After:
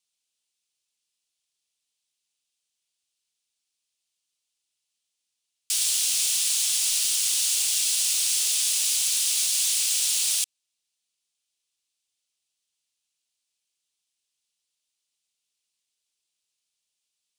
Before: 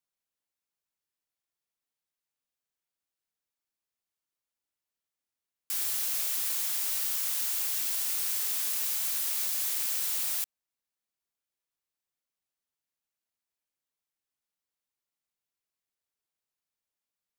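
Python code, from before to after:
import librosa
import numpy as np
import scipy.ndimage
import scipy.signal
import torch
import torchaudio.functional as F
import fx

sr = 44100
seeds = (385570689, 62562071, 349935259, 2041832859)

y = fx.band_shelf(x, sr, hz=5000.0, db=15.5, octaves=2.3)
y = F.gain(torch.from_numpy(y), -2.5).numpy()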